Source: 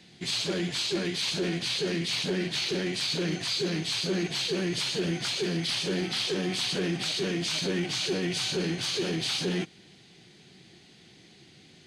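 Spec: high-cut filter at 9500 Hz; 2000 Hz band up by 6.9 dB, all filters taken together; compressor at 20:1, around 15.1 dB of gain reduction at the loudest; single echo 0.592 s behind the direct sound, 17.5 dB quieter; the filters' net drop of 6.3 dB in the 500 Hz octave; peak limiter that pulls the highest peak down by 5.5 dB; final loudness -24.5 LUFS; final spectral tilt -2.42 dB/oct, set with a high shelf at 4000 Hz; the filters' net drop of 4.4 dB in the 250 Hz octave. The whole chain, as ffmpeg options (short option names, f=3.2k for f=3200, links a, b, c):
-af "lowpass=9.5k,equalizer=f=250:t=o:g=-5,equalizer=f=500:t=o:g=-7,equalizer=f=2k:t=o:g=7.5,highshelf=f=4k:g=5.5,acompressor=threshold=-37dB:ratio=20,alimiter=level_in=9dB:limit=-24dB:level=0:latency=1,volume=-9dB,aecho=1:1:592:0.133,volume=16.5dB"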